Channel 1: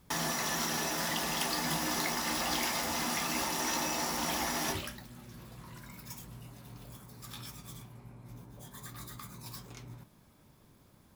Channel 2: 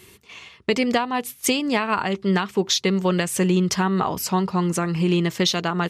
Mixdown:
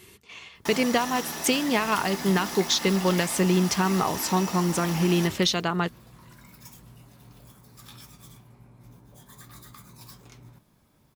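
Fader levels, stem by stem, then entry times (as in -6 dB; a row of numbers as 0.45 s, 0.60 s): -1.5 dB, -2.5 dB; 0.55 s, 0.00 s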